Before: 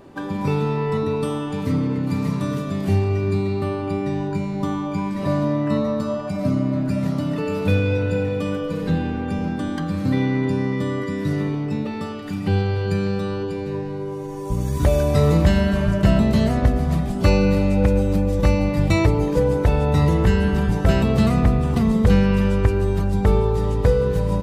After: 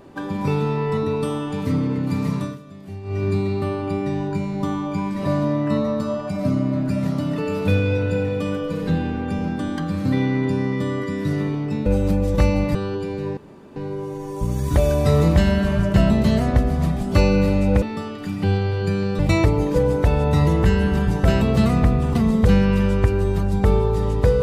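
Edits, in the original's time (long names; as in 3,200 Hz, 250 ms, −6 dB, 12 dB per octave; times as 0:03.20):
0:02.38–0:03.23: duck −15.5 dB, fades 0.20 s
0:11.86–0:13.23: swap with 0:17.91–0:18.80
0:13.85: splice in room tone 0.39 s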